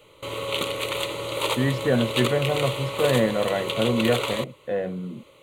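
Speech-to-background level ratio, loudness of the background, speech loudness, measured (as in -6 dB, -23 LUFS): 2.0 dB, -27.5 LUFS, -25.5 LUFS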